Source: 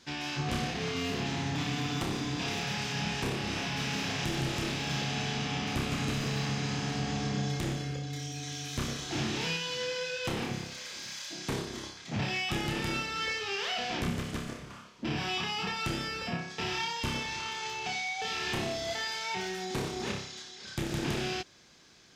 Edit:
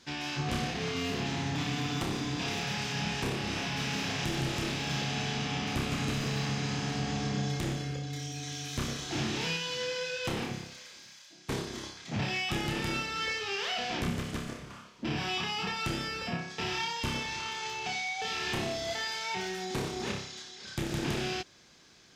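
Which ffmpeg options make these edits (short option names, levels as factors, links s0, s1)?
-filter_complex "[0:a]asplit=2[s0][s1];[s0]atrim=end=11.49,asetpts=PTS-STARTPTS,afade=t=out:st=10.38:d=1.11:c=qua:silence=0.188365[s2];[s1]atrim=start=11.49,asetpts=PTS-STARTPTS,afade=t=in:d=0.004:c=hsin:silence=0.188365[s3];[s2][s3]concat=n=2:v=0:a=1"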